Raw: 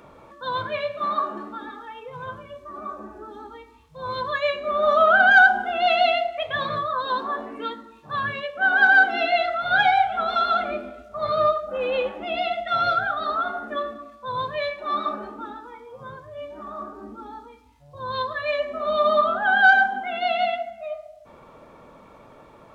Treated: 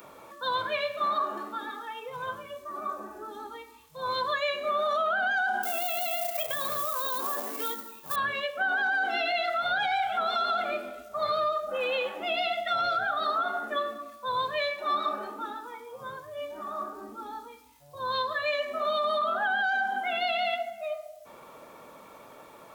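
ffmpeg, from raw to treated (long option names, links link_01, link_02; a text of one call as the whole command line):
ffmpeg -i in.wav -filter_complex "[0:a]asettb=1/sr,asplit=3[link_01][link_02][link_03];[link_01]atrim=end=5.634[link_04];[link_02]atrim=start=5.63:end=8.16,asetpts=PTS-STARTPTS,afade=type=in:duration=0.004:curve=qsin,afade=type=out:start_time=2.526:duration=0.004:curve=qsin,acrusher=bits=3:mode=log:mix=0:aa=0.000001[link_05];[link_03]atrim=start=8.156[link_06];[link_04][link_05]acrossfade=duration=0.004:curve1=hsin:curve2=qsin[link_07];[link_07][link_06]acrossfade=duration=0.004:curve1=qsin:curve2=hsin,aemphasis=mode=production:type=bsi,alimiter=limit=-16dB:level=0:latency=1:release=26,acrossover=split=320|960[link_08][link_09][link_10];[link_08]acompressor=threshold=-48dB:ratio=4[link_11];[link_09]acompressor=threshold=-31dB:ratio=4[link_12];[link_10]acompressor=threshold=-29dB:ratio=4[link_13];[link_11][link_12][link_13]amix=inputs=3:normalize=0" out.wav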